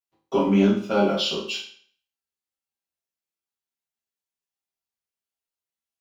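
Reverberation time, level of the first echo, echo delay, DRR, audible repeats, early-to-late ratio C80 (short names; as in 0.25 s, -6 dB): 0.55 s, none, none, -10.0 dB, none, 9.0 dB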